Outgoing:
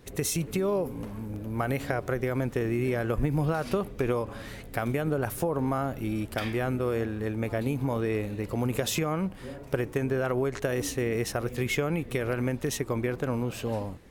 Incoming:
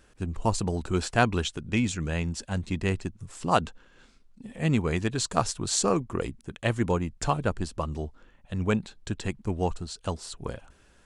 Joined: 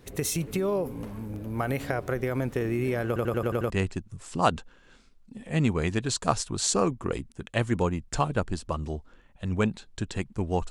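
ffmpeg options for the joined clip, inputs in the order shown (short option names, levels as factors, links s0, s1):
-filter_complex "[0:a]apad=whole_dur=10.7,atrim=end=10.7,asplit=7[s0][s1][s2][s3][s4][s5][s6];[s0]atrim=end=3.162[s7];[s1]atrim=start=3.068:end=3.162[s8];[s2]atrim=start=3.068:end=3.162[s9];[s3]atrim=start=3.068:end=3.162[s10];[s4]atrim=start=3.068:end=3.162[s11];[s5]atrim=start=3.068:end=3.162[s12];[s6]atrim=start=3.068:end=3.162[s13];[1:a]atrim=start=2.788:end=9.79[s14];[s7][s8]acrossfade=d=0.004:c1=hsin:c2=hsin[s15];[s15][s9]acrossfade=d=0.004:c1=hsin:c2=hsin[s16];[s16][s10]acrossfade=d=0.004:c1=hsin:c2=hsin[s17];[s17][s11]acrossfade=d=0.004:c1=hsin:c2=hsin[s18];[s18][s12]acrossfade=d=0.004:c1=hsin:c2=hsin[s19];[s19][s13]acrossfade=d=0.004:c1=hsin:c2=hsin[s20];[s20][s14]acrossfade=d=0.004:c1=hsin:c2=hsin"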